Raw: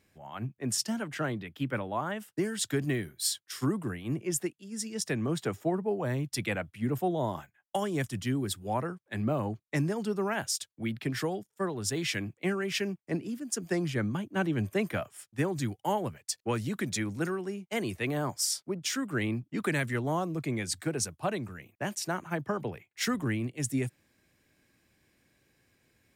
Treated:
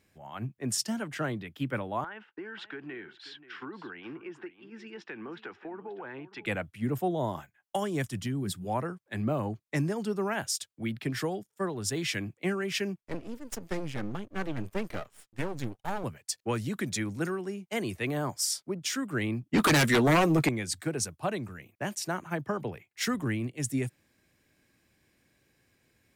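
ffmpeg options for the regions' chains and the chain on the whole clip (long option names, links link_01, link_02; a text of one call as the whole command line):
ffmpeg -i in.wav -filter_complex "[0:a]asettb=1/sr,asplit=3[link_01][link_02][link_03];[link_01]atrim=end=2.044[link_04];[link_02]atrim=start=2.04:end=6.46,asetpts=PTS-STARTPTS,afade=type=in:duration=0.004:curve=qsin,afade=type=out:start_time=4.416:duration=0.004:curve=qsin,highpass=340,equalizer=frequency=350:width_type=q:width=4:gain=4,equalizer=frequency=610:width_type=q:width=4:gain=-8,equalizer=frequency=880:width_type=q:width=4:gain=7,equalizer=frequency=1500:width_type=q:width=4:gain=9,equalizer=frequency=2600:width_type=q:width=4:gain=4,lowpass=frequency=3000:width=0.5412,lowpass=frequency=3000:width=1.3066,acompressor=threshold=-38dB:ratio=5:attack=3.2:release=140:knee=1:detection=peak,aecho=1:1:532:0.168,atrim=end_sample=194922[link_05];[link_03]atrim=start=6.456[link_06];[link_04][link_05]acrossfade=duration=0.004:curve1=hsin:curve2=qsin[link_07];[link_07][link_06]acrossfade=duration=0.004:curve1=qsin:curve2=hsin,asettb=1/sr,asplit=3[link_08][link_09][link_10];[link_08]atrim=end=8.224[link_11];[link_09]atrim=start=8.22:end=8.65,asetpts=PTS-STARTPTS,afade=type=in:duration=0.004:curve=qsin,afade=type=out:start_time=0.426:duration=0.004:curve=qsin,acompressor=threshold=-31dB:ratio=4:attack=3.2:release=140:knee=1:detection=peak,equalizer=frequency=170:width=2.8:gain=13[link_12];[link_10]atrim=start=8.646[link_13];[link_11][link_12]acrossfade=duration=0.004:curve1=hsin:curve2=qsin[link_14];[link_14][link_13]acrossfade=duration=0.004:curve1=qsin:curve2=hsin,asettb=1/sr,asplit=3[link_15][link_16][link_17];[link_15]atrim=end=13.014[link_18];[link_16]atrim=start=13.01:end=16.04,asetpts=PTS-STARTPTS,afade=type=in:duration=0.004:curve=qsin,afade=type=out:start_time=3.026:duration=0.004:curve=qsin,highshelf=frequency=8400:gain=-6,aeval=exprs='max(val(0),0)':channel_layout=same[link_19];[link_17]atrim=start=16.036[link_20];[link_18][link_19]acrossfade=duration=0.004:curve1=hsin:curve2=qsin[link_21];[link_21][link_20]acrossfade=duration=0.004:curve1=qsin:curve2=hsin,asettb=1/sr,asplit=3[link_22][link_23][link_24];[link_22]atrim=end=19.534[link_25];[link_23]atrim=start=19.53:end=20.49,asetpts=PTS-STARTPTS,afade=type=in:duration=0.004:curve=qsin,afade=type=out:start_time=0.956:duration=0.004:curve=qsin,highpass=frequency=200:poles=1,asplit=2[link_26][link_27];[link_27]adelay=13,volume=-11dB[link_28];[link_26][link_28]amix=inputs=2:normalize=0,atrim=end_sample=42336,aeval=exprs='0.119*sin(PI/2*3.16*val(0)/0.119)':channel_layout=same[link_29];[link_24]atrim=start=20.486[link_30];[link_25][link_29]acrossfade=duration=0.004:curve1=hsin:curve2=qsin[link_31];[link_31][link_30]acrossfade=duration=0.004:curve1=qsin:curve2=hsin" out.wav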